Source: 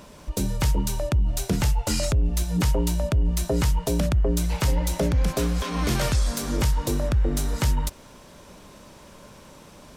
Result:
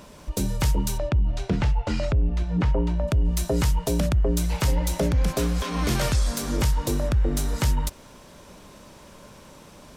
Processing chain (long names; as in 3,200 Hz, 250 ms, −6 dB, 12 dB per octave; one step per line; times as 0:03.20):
0:00.97–0:03.07: low-pass filter 3,800 Hz → 2,000 Hz 12 dB per octave